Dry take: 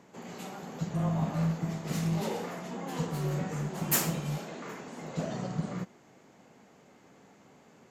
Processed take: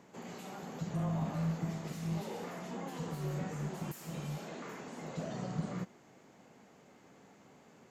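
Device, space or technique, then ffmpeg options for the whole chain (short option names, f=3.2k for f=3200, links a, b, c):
de-esser from a sidechain: -filter_complex "[0:a]asplit=2[a][b];[b]highpass=f=6.8k:p=1,apad=whole_len=348536[c];[a][c]sidechaincompress=threshold=-54dB:ratio=4:attack=4.7:release=39,volume=-2dB"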